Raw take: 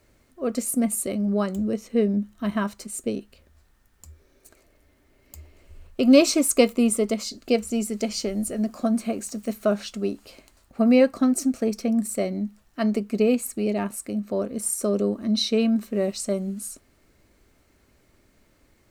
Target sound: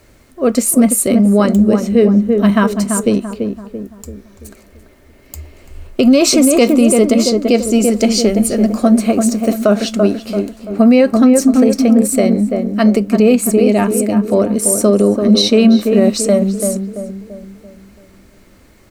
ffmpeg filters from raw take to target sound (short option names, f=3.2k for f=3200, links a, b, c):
-filter_complex "[0:a]asplit=2[a][b];[b]adelay=337,lowpass=f=1.2k:p=1,volume=-5.5dB,asplit=2[c][d];[d]adelay=337,lowpass=f=1.2k:p=1,volume=0.47,asplit=2[e][f];[f]adelay=337,lowpass=f=1.2k:p=1,volume=0.47,asplit=2[g][h];[h]adelay=337,lowpass=f=1.2k:p=1,volume=0.47,asplit=2[i][j];[j]adelay=337,lowpass=f=1.2k:p=1,volume=0.47,asplit=2[k][l];[l]adelay=337,lowpass=f=1.2k:p=1,volume=0.47[m];[a][c][e][g][i][k][m]amix=inputs=7:normalize=0,alimiter=level_in=14dB:limit=-1dB:release=50:level=0:latency=1,volume=-1dB"